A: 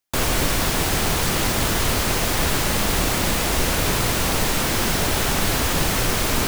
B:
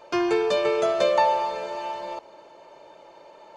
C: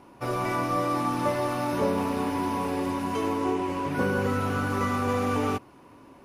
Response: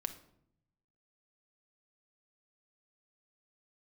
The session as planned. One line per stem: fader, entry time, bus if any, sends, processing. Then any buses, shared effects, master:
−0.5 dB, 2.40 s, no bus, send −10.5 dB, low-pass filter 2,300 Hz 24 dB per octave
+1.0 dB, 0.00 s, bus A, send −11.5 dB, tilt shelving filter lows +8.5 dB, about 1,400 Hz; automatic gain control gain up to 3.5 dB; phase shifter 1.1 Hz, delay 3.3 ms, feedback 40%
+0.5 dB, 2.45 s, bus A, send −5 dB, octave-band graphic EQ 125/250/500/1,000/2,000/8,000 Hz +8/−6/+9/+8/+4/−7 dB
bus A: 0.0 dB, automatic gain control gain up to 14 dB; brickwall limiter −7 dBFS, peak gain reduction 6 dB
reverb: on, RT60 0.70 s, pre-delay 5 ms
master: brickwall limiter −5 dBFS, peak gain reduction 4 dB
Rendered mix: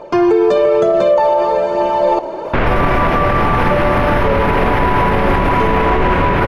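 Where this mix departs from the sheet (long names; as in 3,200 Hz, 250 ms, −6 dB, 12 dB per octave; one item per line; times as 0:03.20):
stem A −0.5 dB → +11.0 dB
stem B +1.0 dB → +12.5 dB
stem C +0.5 dB → +7.0 dB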